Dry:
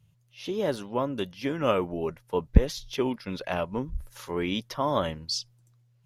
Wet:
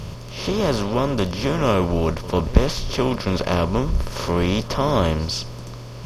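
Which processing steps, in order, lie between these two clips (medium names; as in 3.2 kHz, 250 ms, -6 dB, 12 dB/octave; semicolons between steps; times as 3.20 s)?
spectral levelling over time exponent 0.4; reverse echo 97 ms -17.5 dB; trim +1 dB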